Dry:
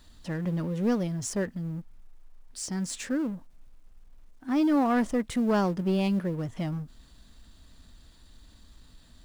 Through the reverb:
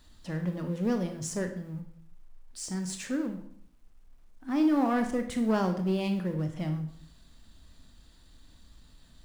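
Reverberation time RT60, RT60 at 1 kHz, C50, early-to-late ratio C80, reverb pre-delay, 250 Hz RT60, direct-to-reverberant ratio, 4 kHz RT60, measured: 0.60 s, 0.55 s, 9.0 dB, 12.0 dB, 23 ms, 0.70 s, 6.0 dB, 0.50 s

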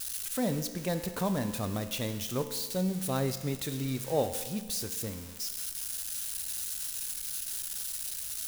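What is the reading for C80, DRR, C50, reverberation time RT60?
11.5 dB, 8.0 dB, 10.0 dB, 1.4 s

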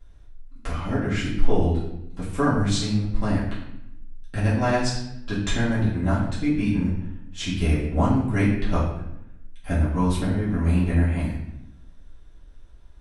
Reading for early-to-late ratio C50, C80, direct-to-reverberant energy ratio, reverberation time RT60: 3.5 dB, 6.0 dB, −10.0 dB, 0.80 s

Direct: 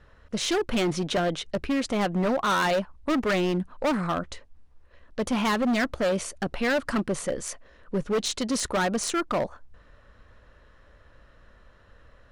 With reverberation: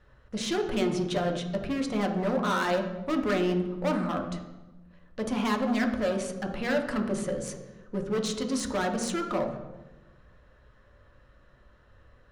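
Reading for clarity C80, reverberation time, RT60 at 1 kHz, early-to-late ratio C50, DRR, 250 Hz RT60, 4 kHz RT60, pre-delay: 9.5 dB, 1.1 s, 1.0 s, 7.0 dB, 2.5 dB, 1.4 s, 0.75 s, 3 ms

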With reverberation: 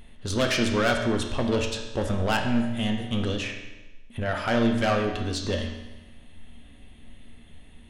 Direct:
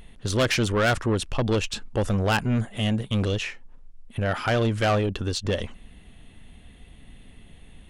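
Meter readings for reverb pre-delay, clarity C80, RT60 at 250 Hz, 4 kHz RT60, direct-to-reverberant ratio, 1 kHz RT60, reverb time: 3 ms, 7.5 dB, 1.1 s, 1.0 s, 2.0 dB, 1.1 s, 1.1 s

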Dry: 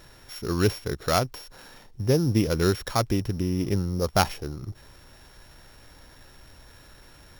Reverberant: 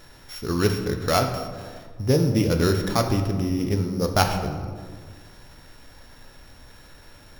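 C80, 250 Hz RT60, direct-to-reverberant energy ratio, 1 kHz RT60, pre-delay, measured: 8.5 dB, 2.0 s, 4.0 dB, 1.5 s, 4 ms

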